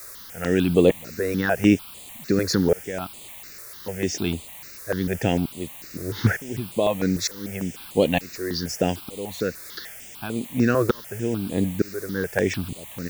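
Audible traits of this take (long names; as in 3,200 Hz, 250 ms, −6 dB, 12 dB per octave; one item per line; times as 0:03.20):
tremolo saw up 1.1 Hz, depth 100%
a quantiser's noise floor 8 bits, dither triangular
notches that jump at a steady rate 6.7 Hz 830–5,500 Hz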